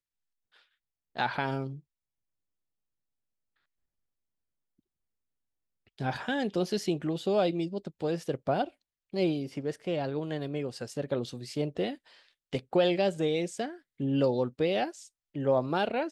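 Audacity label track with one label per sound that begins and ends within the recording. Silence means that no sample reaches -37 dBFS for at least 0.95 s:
1.170000	1.750000	sound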